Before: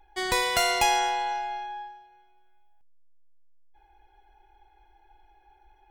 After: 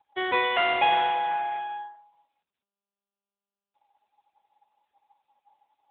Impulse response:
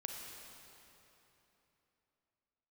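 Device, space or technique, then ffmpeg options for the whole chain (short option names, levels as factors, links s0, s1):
mobile call with aggressive noise cancelling: -filter_complex "[0:a]asettb=1/sr,asplit=3[s0][s1][s2];[s0]atrim=end=1.304[s3];[s1]atrim=start=1.3:end=1.77,asetpts=PTS-STARTPTS,afade=t=in:d=0.004:c=qsin,afade=t=out:st=0.466:d=0.004:c=qsin,equalizer=f=1800:w=0.8:g=2.5[s4];[s2]atrim=start=1.766[s5];[s3][s4]acrossfade=d=0.004:c1=hsin:c2=qsin[s6];[s6][s5]acrossfade=d=0.004:c1=qsin:c2=hsin,highpass=140,afftdn=nr=34:nf=-45,volume=1.33" -ar 8000 -c:a libopencore_amrnb -b:a 10200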